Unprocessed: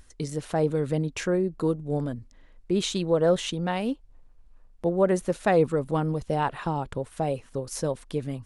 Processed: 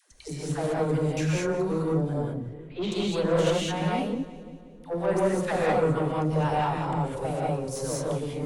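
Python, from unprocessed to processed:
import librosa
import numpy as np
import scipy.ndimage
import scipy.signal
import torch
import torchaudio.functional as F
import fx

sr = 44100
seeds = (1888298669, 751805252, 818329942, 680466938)

p1 = fx.dispersion(x, sr, late='lows', ms=116.0, hz=520.0)
p2 = np.clip(p1, -10.0 ** (-23.5 / 20.0), 10.0 ** (-23.5 / 20.0))
p3 = p1 + (p2 * 10.0 ** (-11.0 / 20.0))
p4 = fx.lowpass(p3, sr, hz=3500.0, slope=24, at=(2.16, 2.92))
p5 = p4 + fx.echo_split(p4, sr, split_hz=530.0, low_ms=335, high_ms=179, feedback_pct=52, wet_db=-16.0, dry=0)
p6 = fx.tube_stage(p5, sr, drive_db=18.0, bias=0.35)
p7 = fx.rev_gated(p6, sr, seeds[0], gate_ms=230, shape='rising', drr_db=-4.5)
y = p7 * 10.0 ** (-5.0 / 20.0)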